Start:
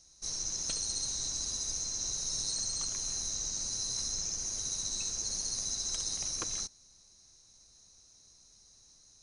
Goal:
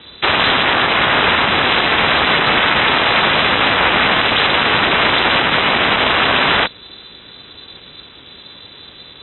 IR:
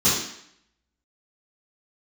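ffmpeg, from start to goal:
-af "aeval=exprs='(mod(56.2*val(0)+1,2)-1)/56.2':c=same,highshelf=f=2.7k:g=10,lowpass=f=3.2k:t=q:w=0.5098,lowpass=f=3.2k:t=q:w=0.6013,lowpass=f=3.2k:t=q:w=0.9,lowpass=f=3.2k:t=q:w=2.563,afreqshift=-3800,aeval=exprs='val(0)*sin(2*PI*200*n/s)':c=same,highpass=44,equalizer=f=230:w=1.2:g=3,alimiter=level_in=36dB:limit=-1dB:release=50:level=0:latency=1,volume=-1dB"

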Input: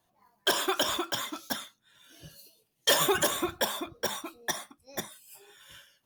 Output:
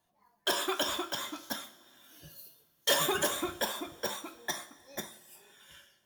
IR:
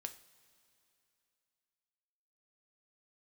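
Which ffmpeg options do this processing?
-filter_complex "[0:a]asettb=1/sr,asplit=3[a][b][c];[a]atrim=end=1.634[d];[b]atrim=start=1.63:end=2.89,asetpts=PTS-STARTPTS,afade=t=in:d=0.004:c=qsin,afade=t=out:st=1.256:d=0.004:c=qsin,equalizer=f=15k:w=1.1:g=12.5[e];[c]atrim=start=2.886[f];[d][e]acrossfade=d=0.004:c1=hsin:c2=qsin[g];[g][f]acrossfade=d=0.004:c1=qsin:c2=hsin[h];[1:a]atrim=start_sample=2205[i];[h][i]afir=irnorm=-1:irlink=0"

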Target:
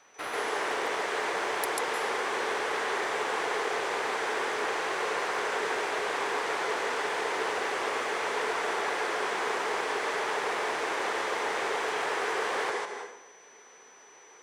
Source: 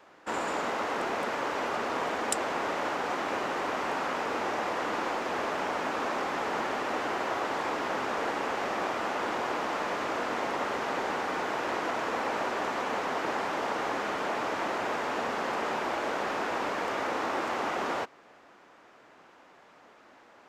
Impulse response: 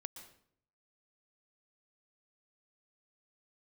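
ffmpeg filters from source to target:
-filter_complex "[0:a]aeval=exprs='val(0)+0.00112*sin(2*PI*4200*n/s)':c=same,asetrate=62622,aresample=44100,asplit=2[a][b];[b]highpass=290,equalizer=f=300:t=q:w=4:g=-6,equalizer=f=430:t=q:w=4:g=10,equalizer=f=620:t=q:w=4:g=-8,equalizer=f=1.3k:t=q:w=4:g=-9,equalizer=f=2.7k:t=q:w=4:g=-8,equalizer=f=4k:t=q:w=4:g=-6,lowpass=f=9.6k:w=0.5412,lowpass=f=9.6k:w=1.3066[c];[1:a]atrim=start_sample=2205,asetrate=31311,aresample=44100,adelay=142[d];[c][d]afir=irnorm=-1:irlink=0,volume=7.5dB[e];[a][e]amix=inputs=2:normalize=0,volume=-4dB"

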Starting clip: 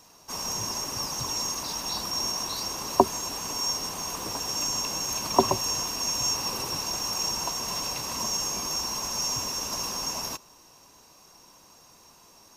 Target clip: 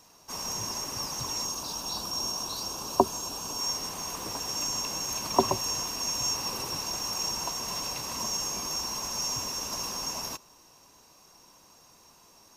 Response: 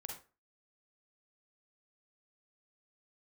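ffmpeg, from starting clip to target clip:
-filter_complex "[0:a]asettb=1/sr,asplit=3[a][b][c];[a]atrim=end=1.454[d];[b]atrim=start=1.45:end=3.6,asetpts=PTS-STARTPTS,afade=t=in:d=0.004:c=qsin,afade=t=out:st=2.146:d=0.004:c=qsin,equalizer=f=2k:t=o:w=0.43:g=-12[e];[c]atrim=start=3.596[f];[d][e]acrossfade=d=0.004:c1=hsin:c2=qsin[g];[g][f]acrossfade=d=0.004:c1=qsin:c2=hsin,volume=-2.5dB"

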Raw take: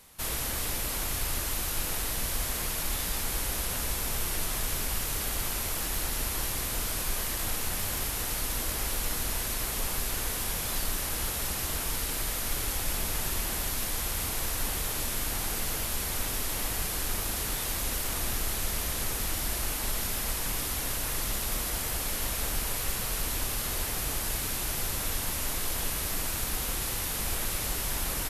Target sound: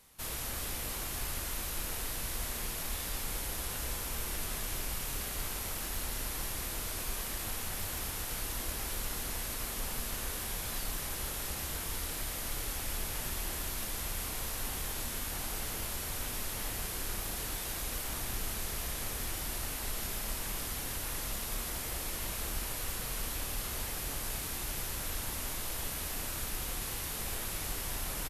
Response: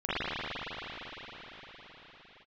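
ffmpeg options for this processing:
-filter_complex "[0:a]asplit=2[a][b];[b]adelay=30,volume=-11dB[c];[a][c]amix=inputs=2:normalize=0,asplit=2[d][e];[1:a]atrim=start_sample=2205,afade=t=out:st=0.41:d=0.01,atrim=end_sample=18522,adelay=133[f];[e][f]afir=irnorm=-1:irlink=0,volume=-19.5dB[g];[d][g]amix=inputs=2:normalize=0,volume=-6.5dB"

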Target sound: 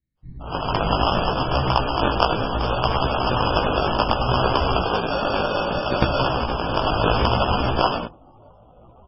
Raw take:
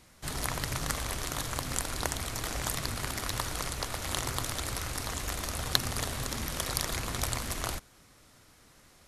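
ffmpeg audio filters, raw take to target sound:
-filter_complex "[0:a]equalizer=f=990:w=0.54:g=8,asettb=1/sr,asplit=3[a][b][c];[a]atrim=end=1.504[d];[b]atrim=start=1.5:end=2.3,asetpts=PTS-STARTPTS,afade=t=in:d=0.004:c=qsin,afade=t=out:st=0.796:d=0.004:c=qsin,asplit=2[e][f];[f]adelay=15,volume=-6dB[g];[e][g]amix=inputs=2:normalize=0,atrim=end_sample=35280[h];[c]atrim=start=2.296[i];[d][h]acrossfade=d=0.004:c1=hsin:c2=qsin[j];[j][i]acrossfade=d=0.004:c1=qsin:c2=hsin,asettb=1/sr,asplit=3[k][l][m];[k]atrim=end=4.834[n];[l]atrim=start=4.83:end=6.01,asetpts=PTS-STARTPTS,afade=t=in:d=0.004:c=qsin,afade=t=out:st=1.176:d=0.004:c=qsin,lowpass=f=3k:t=q:w=0.5098,lowpass=f=3k:t=q:w=0.6013,lowpass=f=3k:t=q:w=0.9,lowpass=f=3k:t=q:w=2.563,afreqshift=-3500[o];[m]atrim=start=6.006[p];[n][o]acrossfade=d=0.004:c1=hsin:c2=qsin[q];[q][p]acrossfade=d=0.004:c1=qsin:c2=hsin,acrossover=split=280|1600[r][s][t];[s]adelay=170[u];[t]adelay=270[v];[r][u][v]amix=inputs=3:normalize=0,acrusher=samples=22:mix=1:aa=0.000001,dynaudnorm=f=450:g=3:m=12dB,afftdn=nr=20:nf=-40,bandreject=f=50:t=h:w=6,bandreject=f=100:t=h:w=6,bandreject=f=150:t=h:w=6,bandreject=f=200:t=h:w=6,bandreject=f=250:t=h:w=6,bandreject=f=300:t=h:w=6,bandreject=f=350:t=h:w=6,flanger=delay=15:depth=4.2:speed=0.65,volume=4.5dB" -ar 22050 -c:a libmp3lame -b:a 16k

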